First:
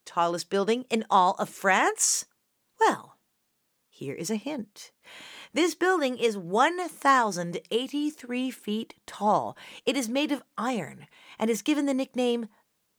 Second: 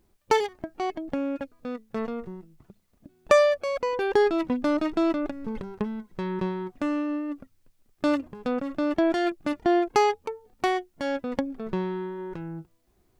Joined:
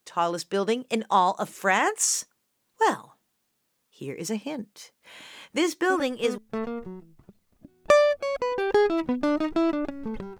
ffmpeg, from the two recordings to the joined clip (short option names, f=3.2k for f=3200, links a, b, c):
-filter_complex "[0:a]apad=whole_dur=10.39,atrim=end=10.39,atrim=end=6.38,asetpts=PTS-STARTPTS[a];[1:a]atrim=start=1.31:end=5.8,asetpts=PTS-STARTPTS[b];[a][b]acrossfade=d=0.48:c1=log:c2=log"